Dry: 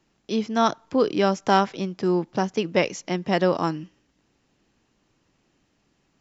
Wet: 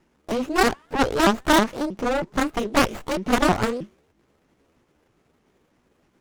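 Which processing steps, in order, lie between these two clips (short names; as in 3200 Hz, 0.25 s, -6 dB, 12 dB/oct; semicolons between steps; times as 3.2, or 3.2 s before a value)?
repeated pitch sweeps +9.5 st, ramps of 0.317 s; added harmonics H 6 -16 dB, 7 -8 dB, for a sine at -5.5 dBFS; running maximum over 9 samples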